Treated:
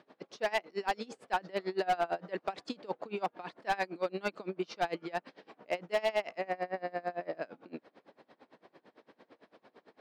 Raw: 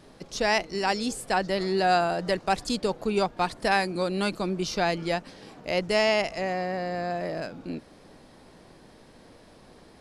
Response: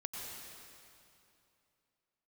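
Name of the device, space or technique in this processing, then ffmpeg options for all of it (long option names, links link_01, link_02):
helicopter radio: -af "highpass=310,lowpass=2800,aeval=exprs='val(0)*pow(10,-26*(0.5-0.5*cos(2*PI*8.9*n/s))/20)':channel_layout=same,asoftclip=type=hard:threshold=-23dB"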